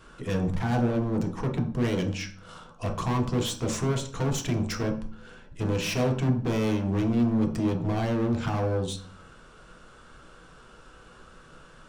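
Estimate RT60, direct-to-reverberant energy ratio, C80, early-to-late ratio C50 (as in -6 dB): 0.45 s, 1.0 dB, 13.0 dB, 9.0 dB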